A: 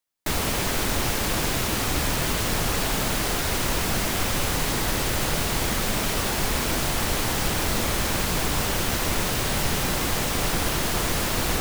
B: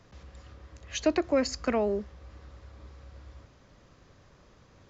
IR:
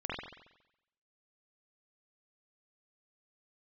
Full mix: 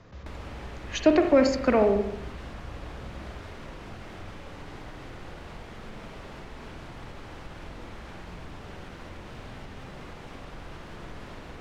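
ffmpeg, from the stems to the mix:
-filter_complex "[0:a]lowpass=f=3.7k:p=1,acompressor=threshold=-29dB:ratio=6,volume=-14dB,asplit=2[a][b];[b]volume=-4.5dB[c];[1:a]volume=3dB,asplit=2[d][e];[e]volume=-7dB[f];[2:a]atrim=start_sample=2205[g];[c][f]amix=inputs=2:normalize=0[h];[h][g]afir=irnorm=-1:irlink=0[i];[a][d][i]amix=inputs=3:normalize=0,aemphasis=mode=reproduction:type=50fm"

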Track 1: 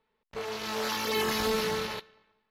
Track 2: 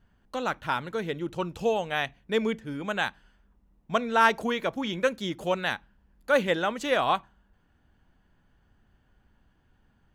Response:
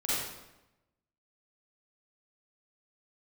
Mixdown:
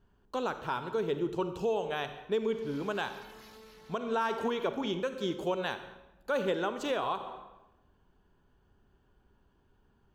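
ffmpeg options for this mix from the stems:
-filter_complex "[0:a]alimiter=level_in=3dB:limit=-24dB:level=0:latency=1,volume=-3dB,adelay=2100,volume=-9.5dB,afade=t=out:st=3.1:d=0.67:silence=0.298538[a];[1:a]equalizer=f=400:t=o:w=0.33:g=11,equalizer=f=1k:t=o:w=0.33:g=5,equalizer=f=2k:t=o:w=0.33:g=-8,equalizer=f=10k:t=o:w=0.33:g=-6,volume=-4.5dB,asplit=3[b][c][d];[c]volume=-17dB[e];[d]apad=whole_len=203300[f];[a][f]sidechaincompress=threshold=-38dB:ratio=3:attack=38:release=907[g];[2:a]atrim=start_sample=2205[h];[e][h]afir=irnorm=-1:irlink=0[i];[g][b][i]amix=inputs=3:normalize=0,alimiter=limit=-21.5dB:level=0:latency=1:release=202"

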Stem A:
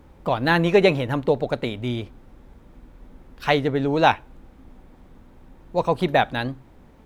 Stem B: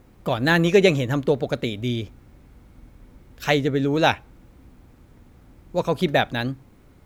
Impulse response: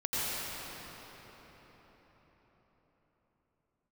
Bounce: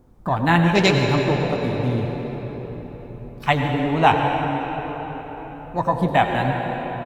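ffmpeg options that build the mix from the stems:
-filter_complex "[0:a]afwtdn=0.0355,bass=f=250:g=-1,treble=f=4k:g=14,volume=2.5dB,asplit=2[a][b];[b]volume=-9dB[c];[1:a]lowpass=f=1.3k:w=0.5412,lowpass=f=1.3k:w=1.3066,adelay=0.3,volume=1.5dB,asplit=2[d][e];[e]volume=-20.5dB[f];[2:a]atrim=start_sample=2205[g];[c][f]amix=inputs=2:normalize=0[h];[h][g]afir=irnorm=-1:irlink=0[i];[a][d][i]amix=inputs=3:normalize=0,flanger=delay=7.9:depth=3.5:regen=-61:speed=0.88:shape=sinusoidal"

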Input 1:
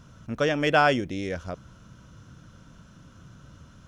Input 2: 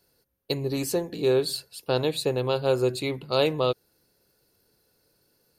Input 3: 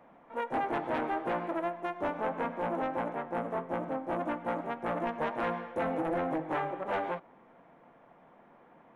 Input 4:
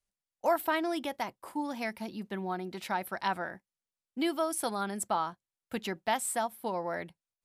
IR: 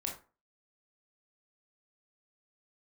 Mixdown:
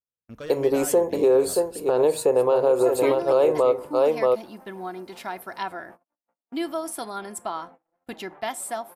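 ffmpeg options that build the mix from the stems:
-filter_complex "[0:a]alimiter=limit=-14.5dB:level=0:latency=1:release=475,volume=22.5dB,asoftclip=hard,volume=-22.5dB,volume=-10.5dB,asplit=3[a][b][c];[b]volume=-15dB[d];[1:a]equalizer=f=125:t=o:w=1:g=-9,equalizer=f=500:t=o:w=1:g=11,equalizer=f=1k:t=o:w=1:g=9,equalizer=f=4k:t=o:w=1:g=-12,equalizer=f=8k:t=o:w=1:g=6,volume=0.5dB,asplit=3[e][f][g];[f]volume=-14.5dB[h];[g]volume=-6.5dB[i];[2:a]acrossover=split=640|1300[j][k][l];[j]acompressor=threshold=-44dB:ratio=4[m];[k]acompressor=threshold=-38dB:ratio=4[n];[l]acompressor=threshold=-53dB:ratio=4[o];[m][n][o]amix=inputs=3:normalize=0,adelay=1800,volume=-14dB,asplit=3[p][q][r];[q]volume=-14dB[s];[r]volume=-11dB[t];[3:a]aecho=1:1:2.9:0.44,adelay=2350,volume=-1.5dB,asplit=2[u][v];[v]volume=-16.5dB[w];[c]apad=whole_len=431961[x];[u][x]sidechaincompress=threshold=-58dB:ratio=8:attack=6.9:release=185[y];[4:a]atrim=start_sample=2205[z];[d][h][s][w]amix=inputs=4:normalize=0[aa];[aa][z]afir=irnorm=-1:irlink=0[ab];[i][t]amix=inputs=2:normalize=0,aecho=0:1:627:1[ac];[a][e][p][y][ab][ac]amix=inputs=6:normalize=0,agate=range=-48dB:threshold=-45dB:ratio=16:detection=peak,alimiter=limit=-11dB:level=0:latency=1:release=107"

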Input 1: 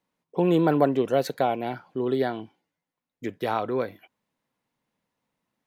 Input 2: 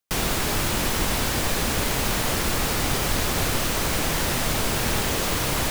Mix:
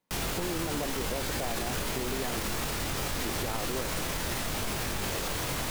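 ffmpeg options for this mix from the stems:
-filter_complex "[0:a]acompressor=threshold=-24dB:ratio=6,volume=-1.5dB[a];[1:a]flanger=delay=19.5:depth=3.5:speed=0.83,volume=-1dB[b];[a][b]amix=inputs=2:normalize=0,alimiter=limit=-22.5dB:level=0:latency=1"

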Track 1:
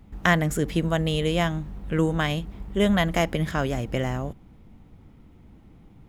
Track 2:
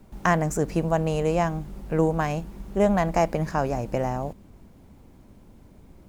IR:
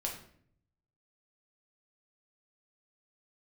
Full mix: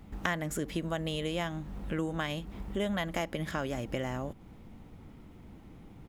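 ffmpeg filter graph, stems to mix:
-filter_complex "[0:a]volume=2.5dB[a];[1:a]adelay=3.9,volume=-11.5dB[b];[a][b]amix=inputs=2:normalize=0,lowshelf=f=180:g=-5,acompressor=threshold=-35dB:ratio=2.5"

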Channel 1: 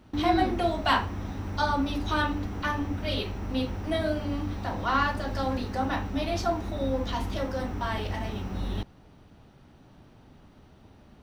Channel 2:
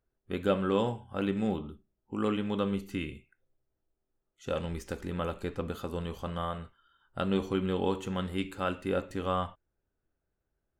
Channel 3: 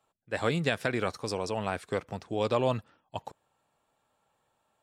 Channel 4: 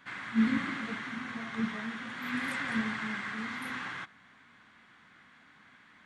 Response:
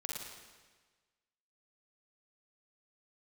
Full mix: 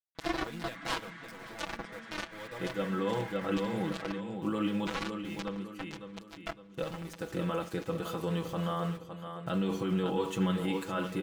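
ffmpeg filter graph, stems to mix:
-filter_complex "[0:a]acrusher=bits=2:mix=0:aa=0.5,volume=-7dB,asplit=4[a][b][c][d];[b]volume=-22.5dB[e];[c]volume=-24dB[f];[1:a]highpass=62,adelay=2300,volume=1dB,asplit=3[g][h][i];[h]volume=-23.5dB[j];[i]volume=-12dB[k];[2:a]volume=-18.5dB,asplit=2[l][m];[m]volume=-10dB[n];[3:a]alimiter=level_in=4.5dB:limit=-24dB:level=0:latency=1,volume=-4.5dB,adelay=150,volume=-17.5dB[o];[d]apad=whole_len=577694[p];[g][p]sidechaincompress=threshold=-55dB:ratio=5:attack=5.1:release=276[q];[a][o]amix=inputs=2:normalize=0,acontrast=61,alimiter=limit=-22dB:level=0:latency=1:release=105,volume=0dB[r];[q][l]amix=inputs=2:normalize=0,aeval=exprs='val(0)*gte(abs(val(0)),0.00376)':c=same,alimiter=level_in=2dB:limit=-24dB:level=0:latency=1:release=36,volume=-2dB,volume=0dB[s];[4:a]atrim=start_sample=2205[t];[e][j]amix=inputs=2:normalize=0[u];[u][t]afir=irnorm=-1:irlink=0[v];[f][k][n]amix=inputs=3:normalize=0,aecho=0:1:560|1120|1680|2240|2800|3360:1|0.4|0.16|0.064|0.0256|0.0102[w];[r][s][v][w]amix=inputs=4:normalize=0,aecho=1:1:6.1:0.86"

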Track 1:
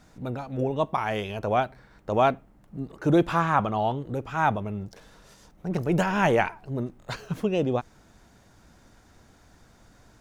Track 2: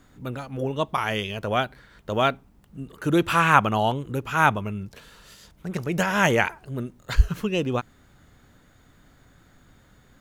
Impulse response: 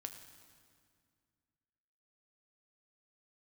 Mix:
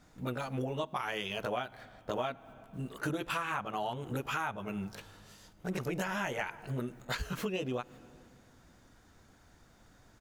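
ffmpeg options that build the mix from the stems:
-filter_complex "[0:a]volume=-8.5dB,asplit=3[a][b][c];[b]volume=-6dB[d];[1:a]highpass=f=430:p=1,acompressor=threshold=-28dB:ratio=2,adelay=16,volume=1dB,asplit=2[e][f];[f]volume=-15.5dB[g];[c]apad=whole_len=450764[h];[e][h]sidechaingate=range=-15dB:threshold=-55dB:ratio=16:detection=peak[i];[2:a]atrim=start_sample=2205[j];[d][g]amix=inputs=2:normalize=0[k];[k][j]afir=irnorm=-1:irlink=0[l];[a][i][l]amix=inputs=3:normalize=0,acompressor=threshold=-32dB:ratio=6"

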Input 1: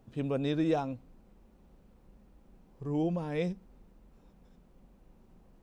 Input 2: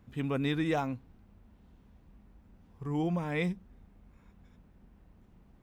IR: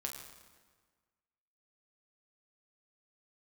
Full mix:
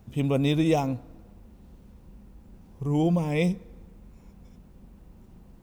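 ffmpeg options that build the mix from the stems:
-filter_complex "[0:a]volume=2dB,asplit=2[a][b];[b]volume=-12dB[c];[1:a]bass=f=250:g=5,treble=f=4k:g=12,volume=0dB[d];[2:a]atrim=start_sample=2205[e];[c][e]afir=irnorm=-1:irlink=0[f];[a][d][f]amix=inputs=3:normalize=0"

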